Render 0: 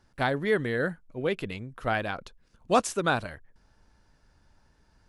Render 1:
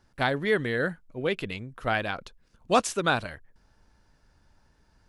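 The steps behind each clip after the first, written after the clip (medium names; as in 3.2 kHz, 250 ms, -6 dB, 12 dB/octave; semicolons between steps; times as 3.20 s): dynamic bell 3.2 kHz, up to +4 dB, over -44 dBFS, Q 0.71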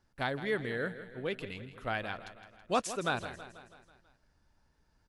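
feedback delay 163 ms, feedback 57%, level -13 dB; trim -8 dB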